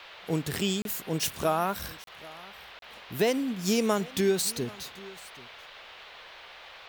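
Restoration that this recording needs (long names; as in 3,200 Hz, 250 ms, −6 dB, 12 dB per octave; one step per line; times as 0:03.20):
repair the gap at 0:00.82/0:02.04/0:02.79, 32 ms
noise reduction from a noise print 26 dB
echo removal 784 ms −21 dB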